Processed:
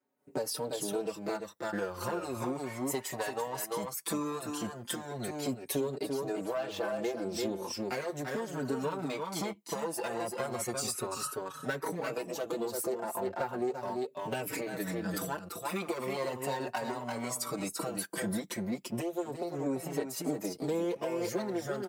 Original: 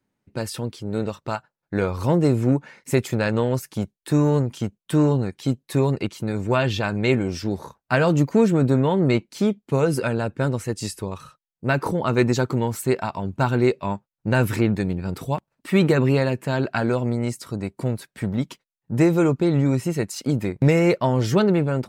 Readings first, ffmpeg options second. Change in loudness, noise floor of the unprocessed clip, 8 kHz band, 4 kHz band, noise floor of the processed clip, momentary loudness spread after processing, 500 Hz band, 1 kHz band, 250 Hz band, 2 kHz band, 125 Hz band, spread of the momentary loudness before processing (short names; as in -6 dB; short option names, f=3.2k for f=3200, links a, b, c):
-13.0 dB, -84 dBFS, -0.5 dB, -7.0 dB, -50 dBFS, 3 LU, -11.0 dB, -8.5 dB, -15.0 dB, -12.0 dB, -22.0 dB, 11 LU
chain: -filter_complex "[0:a]aeval=exprs='clip(val(0),-1,0.0447)':c=same,dynaudnorm=f=170:g=3:m=16.5dB,highpass=480,equalizer=f=2.5k:w=0.38:g=-10,asplit=2[a][b];[b]aecho=0:1:340:0.473[c];[a][c]amix=inputs=2:normalize=0,aphaser=in_gain=1:out_gain=1:delay=1.1:decay=0.48:speed=0.15:type=triangular,acompressor=threshold=-28dB:ratio=10,asplit=2[d][e];[e]adelay=5,afreqshift=0.36[f];[d][f]amix=inputs=2:normalize=1"